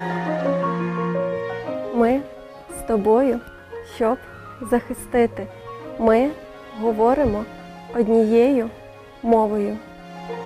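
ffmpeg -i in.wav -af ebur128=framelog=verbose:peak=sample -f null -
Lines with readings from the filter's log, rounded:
Integrated loudness:
  I:         -21.0 LUFS
  Threshold: -32.1 LUFS
Loudness range:
  LRA:         3.1 LU
  Threshold: -41.9 LUFS
  LRA low:   -23.2 LUFS
  LRA high:  -20.1 LUFS
Sample peak:
  Peak:       -5.7 dBFS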